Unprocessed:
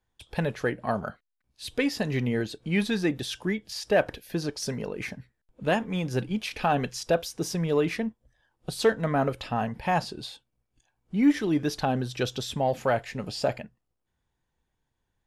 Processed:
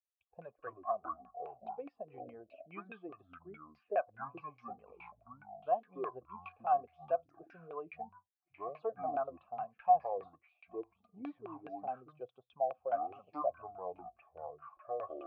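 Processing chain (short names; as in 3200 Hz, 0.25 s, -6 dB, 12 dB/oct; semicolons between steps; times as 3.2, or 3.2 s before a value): per-bin expansion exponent 1.5; echoes that change speed 91 ms, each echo -7 st, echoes 2; LFO low-pass saw down 4.8 Hz 360–2100 Hz; vowel filter a; gain -2.5 dB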